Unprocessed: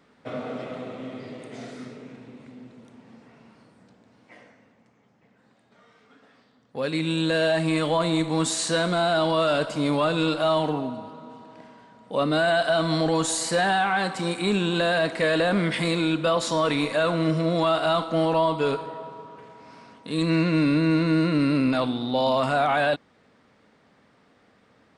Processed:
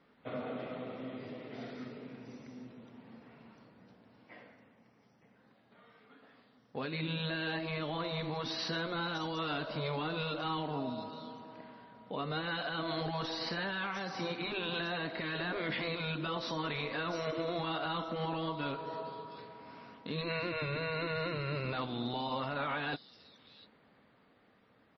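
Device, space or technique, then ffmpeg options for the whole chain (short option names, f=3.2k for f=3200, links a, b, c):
low-bitrate web radio: -filter_complex "[0:a]asplit=3[a][b][c];[a]afade=t=out:st=14.21:d=0.02[d];[b]lowpass=7.3k,afade=t=in:st=14.21:d=0.02,afade=t=out:st=15.28:d=0.02[e];[c]afade=t=in:st=15.28:d=0.02[f];[d][e][f]amix=inputs=3:normalize=0,afftfilt=real='re*lt(hypot(re,im),0.447)':imag='im*lt(hypot(re,im),0.447)':win_size=1024:overlap=0.75,acrossover=split=5600[g][h];[h]adelay=700[i];[g][i]amix=inputs=2:normalize=0,dynaudnorm=f=120:g=31:m=3dB,alimiter=limit=-19.5dB:level=0:latency=1:release=228,volume=-6.5dB" -ar 24000 -c:a libmp3lame -b:a 24k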